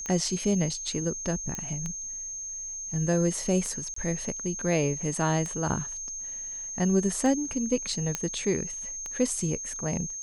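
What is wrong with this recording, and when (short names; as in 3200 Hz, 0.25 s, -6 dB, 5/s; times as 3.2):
tick 33 1/3 rpm -20 dBFS
tone 6400 Hz -34 dBFS
1.55 pop -18 dBFS
3.94–3.96 gap 24 ms
8.15 pop -12 dBFS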